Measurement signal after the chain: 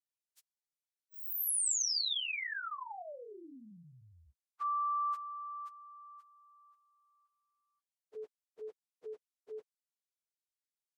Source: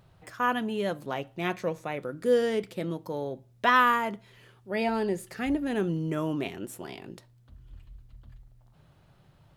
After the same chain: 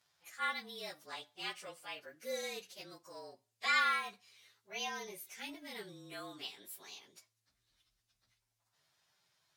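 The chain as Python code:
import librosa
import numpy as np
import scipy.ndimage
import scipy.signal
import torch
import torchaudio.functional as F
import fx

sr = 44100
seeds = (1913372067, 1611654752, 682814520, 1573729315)

y = fx.partial_stretch(x, sr, pct=109)
y = fx.bandpass_q(y, sr, hz=7500.0, q=0.61)
y = y * 10.0 ** (3.5 / 20.0)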